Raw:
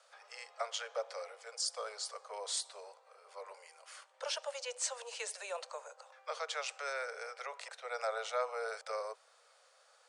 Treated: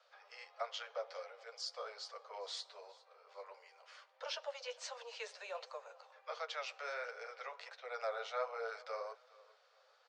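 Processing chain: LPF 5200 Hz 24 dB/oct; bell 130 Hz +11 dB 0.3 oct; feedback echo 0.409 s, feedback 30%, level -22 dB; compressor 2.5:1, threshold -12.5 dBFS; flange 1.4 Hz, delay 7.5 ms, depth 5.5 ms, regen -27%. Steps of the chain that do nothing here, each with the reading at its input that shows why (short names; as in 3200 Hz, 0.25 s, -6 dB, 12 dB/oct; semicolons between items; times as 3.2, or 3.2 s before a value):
bell 130 Hz: input band starts at 380 Hz; compressor, threshold -12.5 dBFS: input peak -23.0 dBFS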